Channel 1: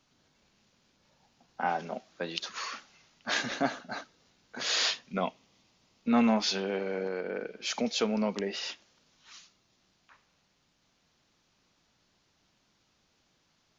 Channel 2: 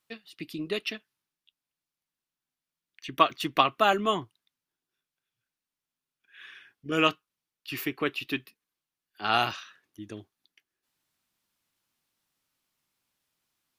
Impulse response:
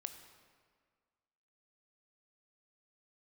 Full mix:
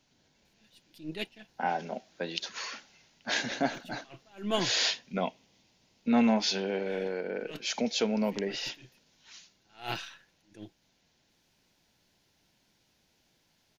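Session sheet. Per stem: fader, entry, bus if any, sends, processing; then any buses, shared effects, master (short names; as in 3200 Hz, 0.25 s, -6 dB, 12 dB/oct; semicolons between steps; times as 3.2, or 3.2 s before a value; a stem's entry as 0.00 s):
+0.5 dB, 0.00 s, no send, dry
+0.5 dB, 0.45 s, no send, half-wave gain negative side -3 dB; comb 5.9 ms, depth 42%; attack slew limiter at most 170 dB/s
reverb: off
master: bell 1200 Hz -13.5 dB 0.22 oct; short-mantissa float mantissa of 8-bit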